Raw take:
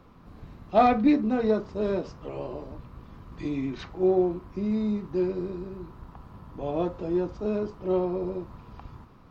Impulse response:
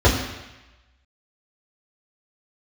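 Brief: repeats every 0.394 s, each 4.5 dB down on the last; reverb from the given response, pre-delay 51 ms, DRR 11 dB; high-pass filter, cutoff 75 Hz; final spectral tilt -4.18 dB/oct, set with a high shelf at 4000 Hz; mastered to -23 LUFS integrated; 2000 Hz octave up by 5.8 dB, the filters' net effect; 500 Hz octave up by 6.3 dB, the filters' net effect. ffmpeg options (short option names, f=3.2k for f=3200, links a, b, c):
-filter_complex "[0:a]highpass=75,equalizer=f=500:t=o:g=8.5,equalizer=f=2k:t=o:g=5,highshelf=f=4k:g=8,aecho=1:1:394|788|1182|1576|1970|2364|2758|3152|3546:0.596|0.357|0.214|0.129|0.0772|0.0463|0.0278|0.0167|0.01,asplit=2[a][b];[1:a]atrim=start_sample=2205,adelay=51[c];[b][c]afir=irnorm=-1:irlink=0,volume=-33dB[d];[a][d]amix=inputs=2:normalize=0,volume=-2.5dB"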